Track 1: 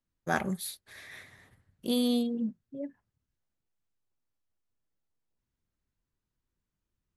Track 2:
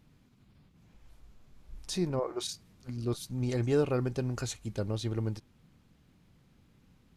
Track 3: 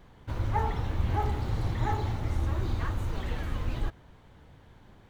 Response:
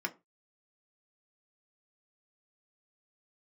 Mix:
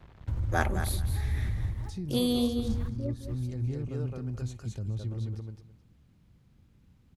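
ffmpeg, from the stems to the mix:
-filter_complex "[0:a]highpass=frequency=250:width=0.5412,highpass=frequency=250:width=1.3066,adelay=250,volume=0.5dB,asplit=2[link_01][link_02];[link_02]volume=-9.5dB[link_03];[1:a]volume=-5dB,asplit=3[link_04][link_05][link_06];[link_05]volume=-10dB[link_07];[2:a]lowpass=3600,alimiter=limit=-23.5dB:level=0:latency=1:release=98,acrusher=bits=7:mix=0:aa=0.5,volume=-2dB[link_08];[link_06]apad=whole_len=224603[link_09];[link_08][link_09]sidechaincompress=threshold=-55dB:ratio=8:attack=16:release=284[link_10];[link_04][link_10]amix=inputs=2:normalize=0,acrossover=split=260[link_11][link_12];[link_12]acompressor=threshold=-51dB:ratio=3[link_13];[link_11][link_13]amix=inputs=2:normalize=0,alimiter=level_in=8dB:limit=-24dB:level=0:latency=1:release=42,volume=-8dB,volume=0dB[link_14];[link_03][link_07]amix=inputs=2:normalize=0,aecho=0:1:214|428|642:1|0.17|0.0289[link_15];[link_01][link_14][link_15]amix=inputs=3:normalize=0,equalizer=frequency=67:width=0.53:gain=11"

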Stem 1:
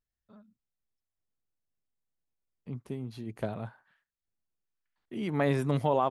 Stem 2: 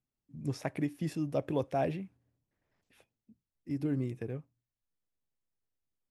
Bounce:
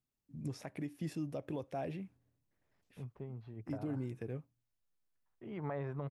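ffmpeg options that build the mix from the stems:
ffmpeg -i stem1.wav -i stem2.wav -filter_complex "[0:a]lowpass=1200,equalizer=frequency=250:width=0.94:gain=-12.5,adelay=300,volume=-1dB[link_01];[1:a]volume=-1dB[link_02];[link_01][link_02]amix=inputs=2:normalize=0,alimiter=level_in=6dB:limit=-24dB:level=0:latency=1:release=290,volume=-6dB" out.wav

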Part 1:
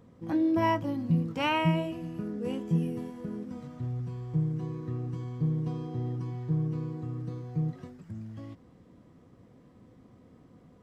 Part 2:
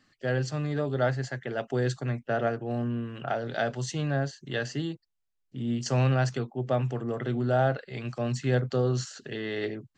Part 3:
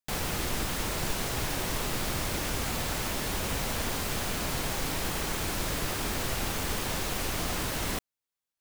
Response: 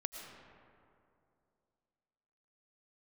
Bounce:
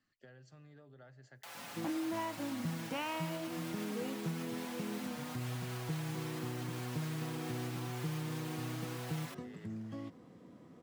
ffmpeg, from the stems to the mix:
-filter_complex "[0:a]highpass=160,acompressor=threshold=-38dB:ratio=6,adelay=1550,volume=1.5dB[link_01];[1:a]acompressor=threshold=-37dB:ratio=6,volume=-16.5dB,asplit=2[link_02][link_03];[link_03]volume=-17.5dB[link_04];[2:a]highpass=frequency=620:width=0.5412,highpass=frequency=620:width=1.3066,asplit=2[link_05][link_06];[link_06]adelay=5.6,afreqshift=0.65[link_07];[link_05][link_07]amix=inputs=2:normalize=1,adelay=1350,volume=2dB[link_08];[link_02][link_08]amix=inputs=2:normalize=0,acrossover=split=780|3600[link_09][link_10][link_11];[link_09]acompressor=threshold=-54dB:ratio=4[link_12];[link_10]acompressor=threshold=-48dB:ratio=4[link_13];[link_11]acompressor=threshold=-52dB:ratio=4[link_14];[link_12][link_13][link_14]amix=inputs=3:normalize=0,alimiter=level_in=14dB:limit=-24dB:level=0:latency=1:release=225,volume=-14dB,volume=0dB[link_15];[3:a]atrim=start_sample=2205[link_16];[link_04][link_16]afir=irnorm=-1:irlink=0[link_17];[link_01][link_15][link_17]amix=inputs=3:normalize=0"

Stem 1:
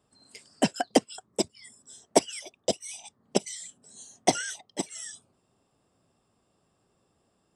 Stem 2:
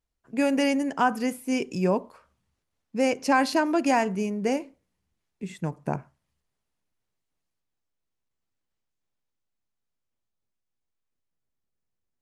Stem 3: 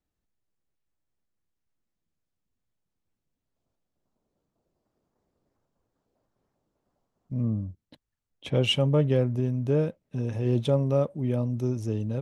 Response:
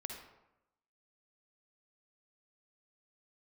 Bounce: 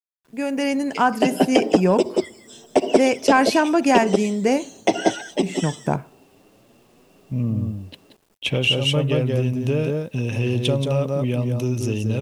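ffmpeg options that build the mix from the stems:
-filter_complex "[0:a]lowpass=5900,equalizer=frequency=360:width_type=o:width=2.3:gain=12.5,asplit=2[link_01][link_02];[link_02]adelay=7.3,afreqshift=1.2[link_03];[link_01][link_03]amix=inputs=2:normalize=1,adelay=600,volume=2.5dB,asplit=3[link_04][link_05][link_06];[link_05]volume=-15.5dB[link_07];[link_06]volume=-9.5dB[link_08];[1:a]dynaudnorm=framelen=200:gausssize=7:maxgain=13.5dB,volume=-11dB,asplit=2[link_09][link_10];[link_10]volume=-23.5dB[link_11];[2:a]highshelf=frequency=3300:gain=9.5,volume=-1.5dB,asplit=3[link_12][link_13][link_14];[link_13]volume=-18dB[link_15];[link_14]volume=-6.5dB[link_16];[link_04][link_12]amix=inputs=2:normalize=0,equalizer=frequency=2700:width_type=o:width=0.45:gain=13.5,acompressor=threshold=-26dB:ratio=6,volume=0dB[link_17];[3:a]atrim=start_sample=2205[link_18];[link_07][link_11][link_15]amix=inputs=3:normalize=0[link_19];[link_19][link_18]afir=irnorm=-1:irlink=0[link_20];[link_08][link_16]amix=inputs=2:normalize=0,aecho=0:1:178:1[link_21];[link_09][link_17][link_20][link_21]amix=inputs=4:normalize=0,acontrast=82,acrusher=bits=9:mix=0:aa=0.000001"

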